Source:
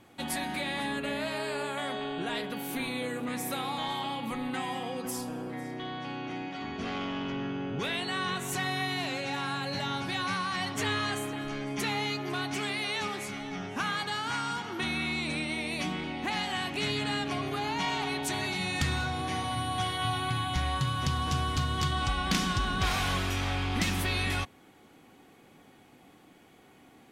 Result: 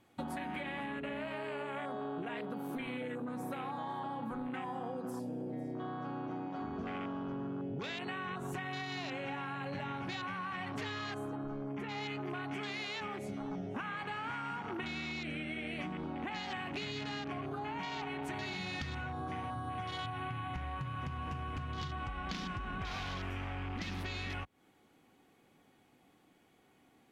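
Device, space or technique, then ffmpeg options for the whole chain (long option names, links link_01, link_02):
serial compression, leveller first: -filter_complex "[0:a]afwtdn=0.0158,acompressor=threshold=-33dB:ratio=3,acompressor=threshold=-44dB:ratio=6,asplit=3[link_01][link_02][link_03];[link_01]afade=type=out:start_time=11.35:duration=0.02[link_04];[link_02]highshelf=frequency=2600:gain=-10.5,afade=type=in:start_time=11.35:duration=0.02,afade=type=out:start_time=11.89:duration=0.02[link_05];[link_03]afade=type=in:start_time=11.89:duration=0.02[link_06];[link_04][link_05][link_06]amix=inputs=3:normalize=0,volume=6.5dB"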